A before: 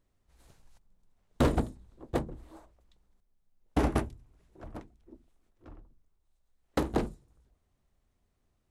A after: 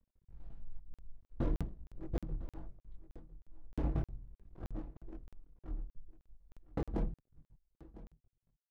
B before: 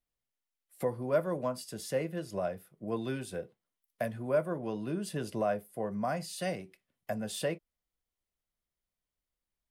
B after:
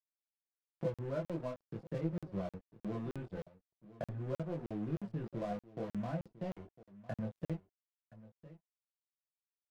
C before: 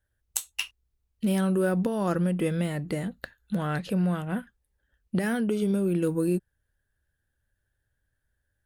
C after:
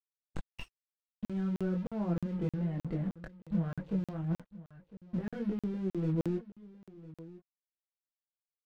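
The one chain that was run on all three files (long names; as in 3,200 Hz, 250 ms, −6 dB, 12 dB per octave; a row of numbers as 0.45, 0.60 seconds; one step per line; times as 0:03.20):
wavefolder on the positive side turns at −18 dBFS
low-pass filter 3,600 Hz 12 dB per octave
spectral tilt −4 dB per octave
comb filter 6 ms, depth 40%
downward compressor 2 to 1, threshold −37 dBFS
dead-zone distortion −45.5 dBFS
multi-voice chorus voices 4, 0.43 Hz, delay 22 ms, depth 4.1 ms
single-tap delay 1,004 ms −18 dB
regular buffer underruns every 0.31 s, samples 2,048, zero, from 0:00.94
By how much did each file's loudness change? −10.0, −6.5, −7.5 LU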